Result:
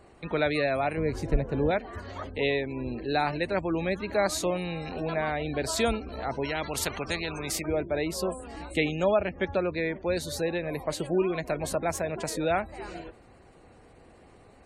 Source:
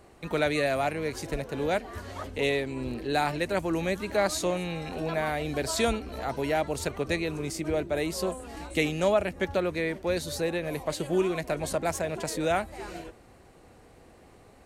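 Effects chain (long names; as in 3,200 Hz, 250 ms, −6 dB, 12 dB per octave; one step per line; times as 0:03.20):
gate on every frequency bin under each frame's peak −30 dB strong
0:00.97–0:01.71: spectral tilt −2.5 dB per octave
0:06.45–0:07.66: every bin compressed towards the loudest bin 2 to 1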